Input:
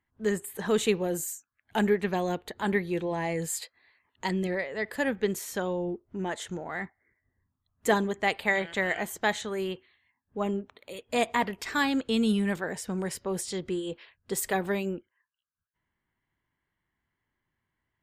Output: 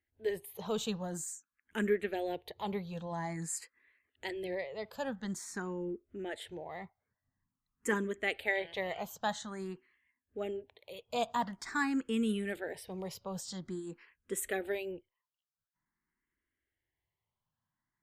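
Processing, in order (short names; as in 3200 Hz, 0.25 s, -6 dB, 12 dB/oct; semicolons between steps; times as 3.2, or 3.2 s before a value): endless phaser +0.48 Hz; gain -4.5 dB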